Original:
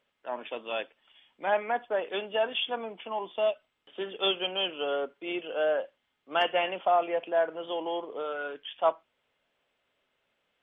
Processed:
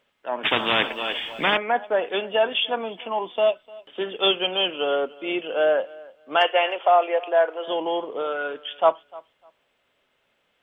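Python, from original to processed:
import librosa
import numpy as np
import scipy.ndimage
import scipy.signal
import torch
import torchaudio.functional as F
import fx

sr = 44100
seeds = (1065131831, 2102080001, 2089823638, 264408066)

y = fx.highpass(x, sr, hz=380.0, slope=24, at=(6.36, 7.68))
y = fx.echo_feedback(y, sr, ms=300, feedback_pct=19, wet_db=-22.0)
y = fx.spectral_comp(y, sr, ratio=4.0, at=(0.43, 1.56), fade=0.02)
y = y * librosa.db_to_amplitude(7.0)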